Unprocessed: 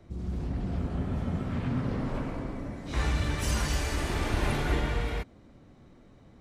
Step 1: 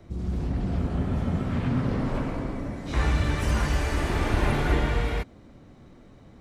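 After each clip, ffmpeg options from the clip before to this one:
-filter_complex "[0:a]acrossover=split=2600[s0][s1];[s1]acompressor=threshold=0.00562:ratio=4:attack=1:release=60[s2];[s0][s2]amix=inputs=2:normalize=0,volume=1.68"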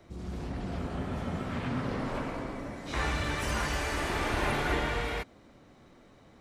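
-af "lowshelf=f=310:g=-11"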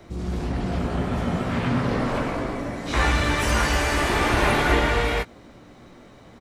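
-filter_complex "[0:a]asplit=2[s0][s1];[s1]adelay=17,volume=0.316[s2];[s0][s2]amix=inputs=2:normalize=0,volume=2.82"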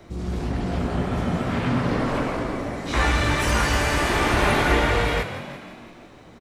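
-filter_complex "[0:a]asplit=8[s0][s1][s2][s3][s4][s5][s6][s7];[s1]adelay=168,afreqshift=45,volume=0.266[s8];[s2]adelay=336,afreqshift=90,volume=0.157[s9];[s3]adelay=504,afreqshift=135,volume=0.0923[s10];[s4]adelay=672,afreqshift=180,volume=0.055[s11];[s5]adelay=840,afreqshift=225,volume=0.0324[s12];[s6]adelay=1008,afreqshift=270,volume=0.0191[s13];[s7]adelay=1176,afreqshift=315,volume=0.0112[s14];[s0][s8][s9][s10][s11][s12][s13][s14]amix=inputs=8:normalize=0"

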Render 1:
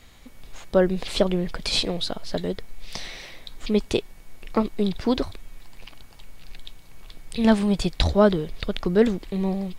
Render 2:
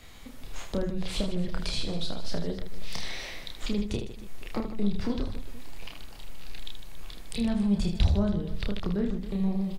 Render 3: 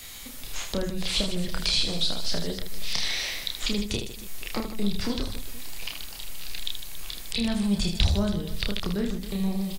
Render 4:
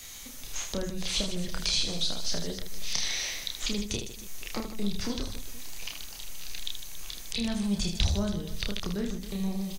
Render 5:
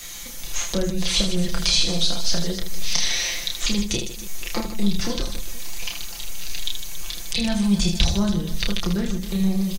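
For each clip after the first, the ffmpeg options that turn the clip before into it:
-filter_complex "[0:a]acrossover=split=170[s0][s1];[s1]acompressor=threshold=0.0178:ratio=6[s2];[s0][s2]amix=inputs=2:normalize=0,asplit=2[s3][s4];[s4]aecho=0:1:30|78|154.8|277.7|474.3:0.631|0.398|0.251|0.158|0.1[s5];[s3][s5]amix=inputs=2:normalize=0"
-filter_complex "[0:a]crystalizer=i=6.5:c=0,acrossover=split=5300[s0][s1];[s1]acompressor=threshold=0.01:ratio=4:attack=1:release=60[s2];[s0][s2]amix=inputs=2:normalize=0"
-af "equalizer=f=6200:t=o:w=0.23:g=10.5,volume=0.631"
-af "aecho=1:1:5.8:0.65,volume=2.11"

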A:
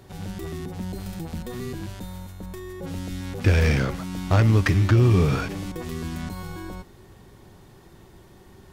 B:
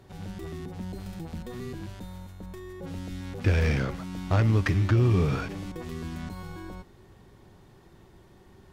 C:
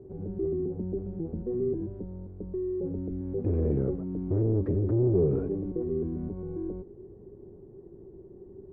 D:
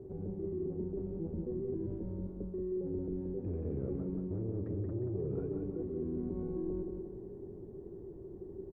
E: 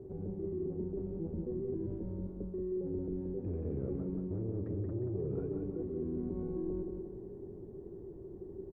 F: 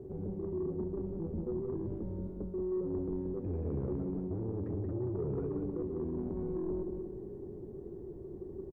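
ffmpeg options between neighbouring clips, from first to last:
-af "highshelf=f=6600:g=-7,volume=0.596"
-af "volume=20,asoftclip=hard,volume=0.0501,lowpass=f=400:t=q:w=4.6"
-af "areverse,acompressor=threshold=0.0158:ratio=6,areverse,aecho=1:1:179|358|537|716|895|1074|1253:0.562|0.292|0.152|0.0791|0.0411|0.0214|0.0111"
-af anull
-filter_complex "[0:a]asoftclip=type=tanh:threshold=0.0316,asplit=2[s0][s1];[s1]adelay=14,volume=0.224[s2];[s0][s2]amix=inputs=2:normalize=0,volume=1.33"

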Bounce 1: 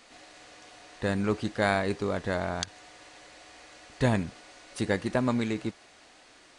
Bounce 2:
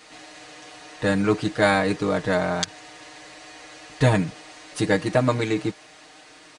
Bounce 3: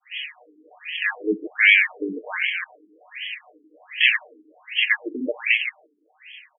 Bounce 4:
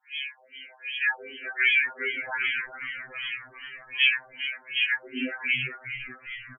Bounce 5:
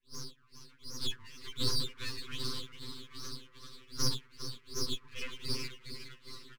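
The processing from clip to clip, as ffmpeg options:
-af "highpass=42,aecho=1:1:6.5:0.96,volume=1.68"
-af "agate=range=0.0224:threshold=0.00891:ratio=3:detection=peak,aexciter=amount=8.4:drive=9.9:freq=2200,afftfilt=real='re*between(b*sr/1024,300*pow(2400/300,0.5+0.5*sin(2*PI*1.3*pts/sr))/1.41,300*pow(2400/300,0.5+0.5*sin(2*PI*1.3*pts/sr))*1.41)':imag='im*between(b*sr/1024,300*pow(2400/300,0.5+0.5*sin(2*PI*1.3*pts/sr))/1.41,300*pow(2400/300,0.5+0.5*sin(2*PI*1.3*pts/sr))*1.41)':win_size=1024:overlap=0.75"
-filter_complex "[0:a]acrossover=split=370|2300[s0][s1][s2];[s0]acompressor=threshold=0.0126:ratio=4[s3];[s1]acompressor=threshold=0.0708:ratio=4[s4];[s2]acompressor=threshold=0.1:ratio=4[s5];[s3][s4][s5]amix=inputs=3:normalize=0,asplit=2[s6][s7];[s7]asplit=6[s8][s9][s10][s11][s12][s13];[s8]adelay=405,afreqshift=-120,volume=0.316[s14];[s9]adelay=810,afreqshift=-240,volume=0.17[s15];[s10]adelay=1215,afreqshift=-360,volume=0.0923[s16];[s11]adelay=1620,afreqshift=-480,volume=0.0495[s17];[s12]adelay=2025,afreqshift=-600,volume=0.0269[s18];[s13]adelay=2430,afreqshift=-720,volume=0.0145[s19];[s14][s15][s16][s17][s18][s19]amix=inputs=6:normalize=0[s20];[s6][s20]amix=inputs=2:normalize=0,afftfilt=real='re*2.45*eq(mod(b,6),0)':imag='im*2.45*eq(mod(b,6),0)':win_size=2048:overlap=0.75"
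-af "aeval=exprs='abs(val(0))':c=same,asuperstop=centerf=690:order=12:qfactor=1.5,volume=0.501"

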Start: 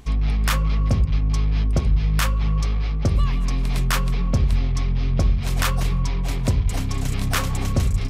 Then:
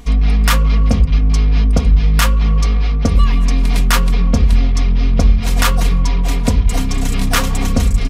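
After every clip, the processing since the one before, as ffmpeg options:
-af "aecho=1:1:4.2:0.68,volume=2"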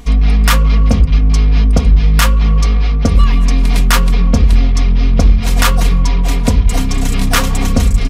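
-af "asoftclip=type=hard:threshold=0.631,volume=1.33"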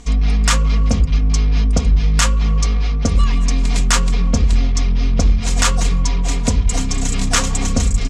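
-af "lowpass=f=7300:t=q:w=3.2,volume=0.562"

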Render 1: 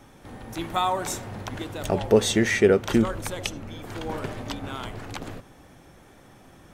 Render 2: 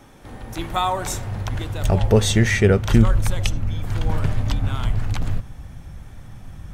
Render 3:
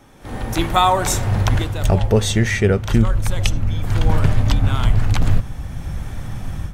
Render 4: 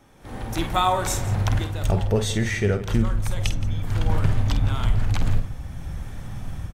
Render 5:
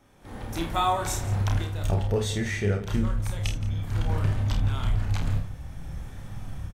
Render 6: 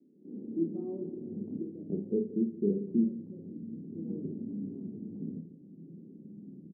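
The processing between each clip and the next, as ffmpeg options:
-af "asubboost=boost=11:cutoff=110,volume=1.41"
-af "dynaudnorm=f=190:g=3:m=4.47,volume=0.841"
-af "aecho=1:1:49|171:0.355|0.15,volume=0.473"
-filter_complex "[0:a]asplit=2[s0][s1];[s1]adelay=30,volume=0.562[s2];[s0][s2]amix=inputs=2:normalize=0,volume=0.531"
-af "asuperpass=centerf=270:order=8:qfactor=1.2,volume=1.33"

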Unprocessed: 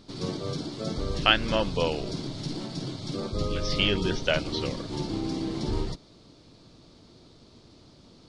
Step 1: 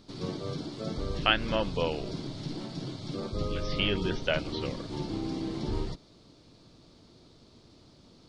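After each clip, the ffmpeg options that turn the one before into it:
-filter_complex "[0:a]acrossover=split=4200[s0][s1];[s1]acompressor=threshold=0.00355:ratio=4:attack=1:release=60[s2];[s0][s2]amix=inputs=2:normalize=0,volume=0.708"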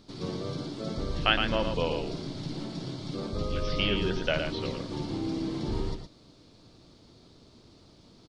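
-af "aecho=1:1:114:0.501"

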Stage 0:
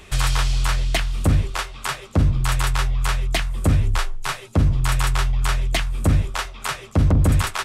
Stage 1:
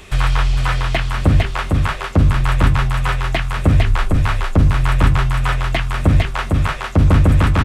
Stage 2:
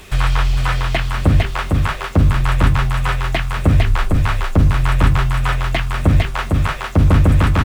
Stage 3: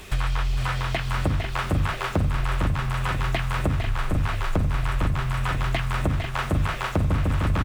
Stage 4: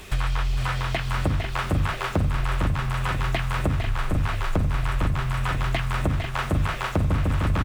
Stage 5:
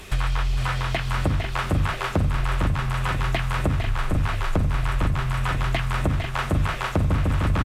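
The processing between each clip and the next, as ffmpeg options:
-filter_complex "[0:a]aecho=1:1:454:0.668,acrossover=split=3100[s0][s1];[s1]acompressor=threshold=0.00631:ratio=4:attack=1:release=60[s2];[s0][s2]amix=inputs=2:normalize=0,volume=1.68"
-af "acrusher=bits=6:mix=0:aa=0.5"
-af "acompressor=threshold=0.126:ratio=6,aecho=1:1:495|990|1485|1980|2475|2970:0.355|0.195|0.107|0.059|0.0325|0.0179,volume=0.75"
-af anull
-af "aresample=32000,aresample=44100,volume=1.12"

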